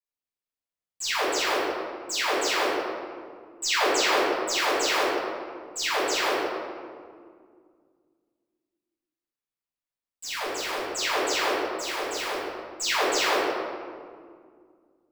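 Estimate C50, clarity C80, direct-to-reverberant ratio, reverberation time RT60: −2.5 dB, 0.0 dB, −14.0 dB, 2.0 s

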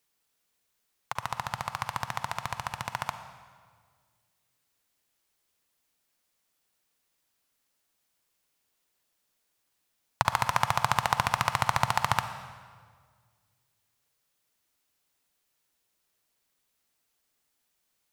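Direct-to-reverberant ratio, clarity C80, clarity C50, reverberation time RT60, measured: 9.5 dB, 11.0 dB, 10.0 dB, 1.8 s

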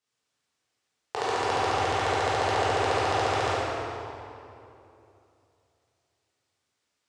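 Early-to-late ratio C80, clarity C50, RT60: −2.5 dB, −5.0 dB, 2.9 s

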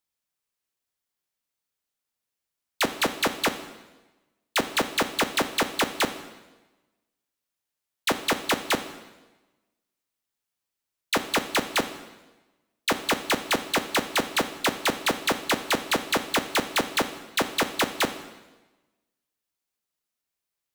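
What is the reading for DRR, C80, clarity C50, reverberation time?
9.0 dB, 13.0 dB, 11.5 dB, 1.1 s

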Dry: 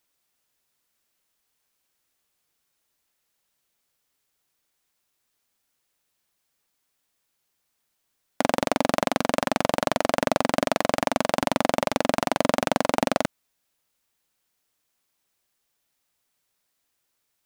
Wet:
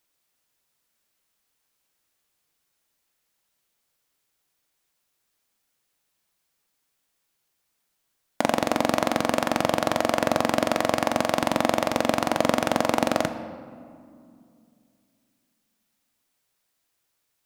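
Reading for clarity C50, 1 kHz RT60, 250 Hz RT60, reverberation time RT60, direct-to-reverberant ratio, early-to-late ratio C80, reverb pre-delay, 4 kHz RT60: 11.5 dB, 2.2 s, 3.3 s, 2.4 s, 9.5 dB, 12.5 dB, 6 ms, 1.2 s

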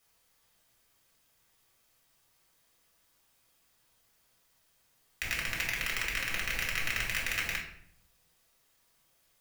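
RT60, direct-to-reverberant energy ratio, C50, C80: 0.65 s, −4.0 dB, 6.0 dB, 9.5 dB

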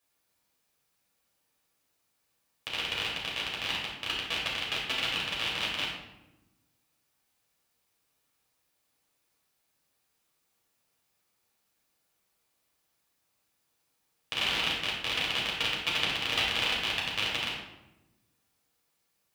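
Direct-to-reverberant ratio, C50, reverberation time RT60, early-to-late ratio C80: −5.5 dB, 2.0 dB, 1.0 s, 5.0 dB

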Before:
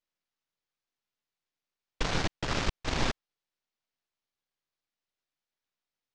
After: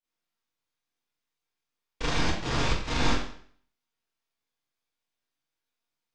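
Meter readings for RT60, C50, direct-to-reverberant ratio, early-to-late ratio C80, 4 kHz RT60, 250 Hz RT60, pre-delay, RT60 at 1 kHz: 0.55 s, 2.5 dB, −9.5 dB, 6.5 dB, 0.55 s, 0.55 s, 24 ms, 0.55 s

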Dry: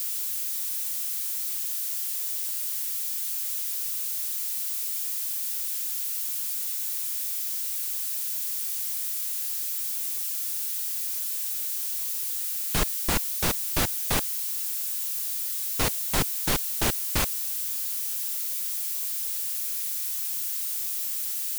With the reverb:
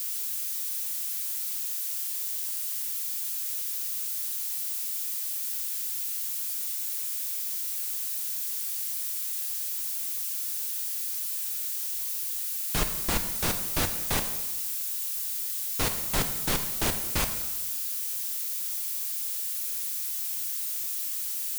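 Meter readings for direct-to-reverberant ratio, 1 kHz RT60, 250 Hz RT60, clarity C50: 6.5 dB, 1.1 s, 1.1 s, 9.0 dB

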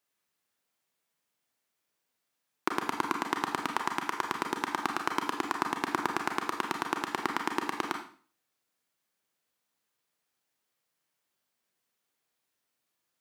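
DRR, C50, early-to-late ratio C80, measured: 3.0 dB, 7.0 dB, 11.0 dB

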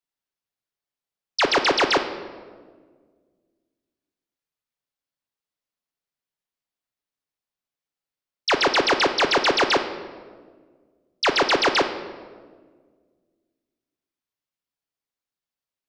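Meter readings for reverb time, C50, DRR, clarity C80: 1.7 s, 9.5 dB, 6.0 dB, 11.5 dB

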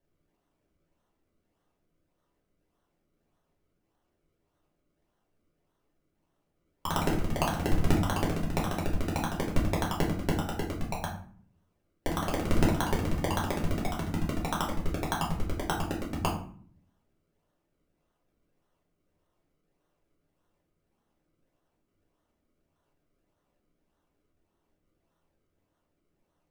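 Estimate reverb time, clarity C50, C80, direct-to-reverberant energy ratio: 0.50 s, 7.0 dB, 11.0 dB, −4.5 dB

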